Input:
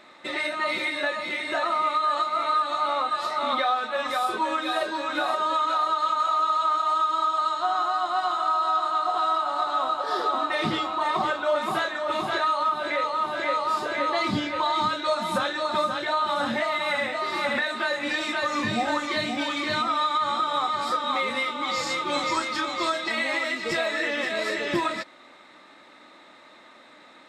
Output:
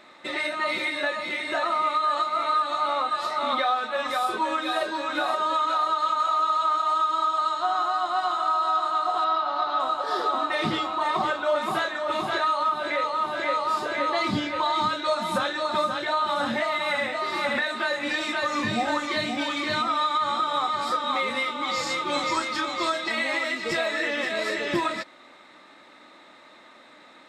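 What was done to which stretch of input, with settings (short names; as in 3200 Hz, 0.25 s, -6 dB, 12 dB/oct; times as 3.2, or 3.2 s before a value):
9.24–9.8 steep low-pass 5700 Hz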